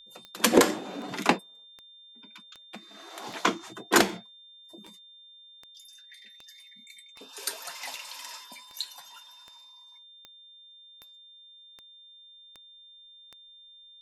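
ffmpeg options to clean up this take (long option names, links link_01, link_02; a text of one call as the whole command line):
ffmpeg -i in.wav -af "adeclick=threshold=4,bandreject=frequency=3600:width=30" out.wav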